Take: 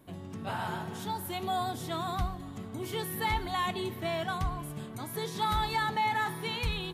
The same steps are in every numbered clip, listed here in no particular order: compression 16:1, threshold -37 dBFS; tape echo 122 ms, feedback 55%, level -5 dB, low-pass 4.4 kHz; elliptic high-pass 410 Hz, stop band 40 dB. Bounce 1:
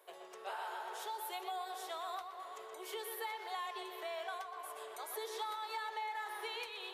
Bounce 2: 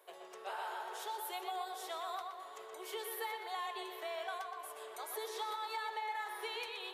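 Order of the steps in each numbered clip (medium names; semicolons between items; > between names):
tape echo > compression > elliptic high-pass; compression > elliptic high-pass > tape echo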